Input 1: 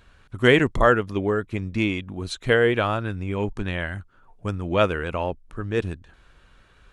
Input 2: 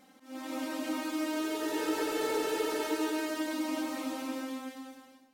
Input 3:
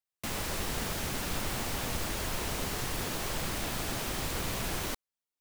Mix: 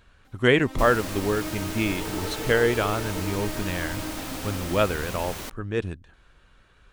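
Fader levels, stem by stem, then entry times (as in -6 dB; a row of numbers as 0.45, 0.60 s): -2.5, -2.0, -1.0 dB; 0.00, 0.25, 0.55 s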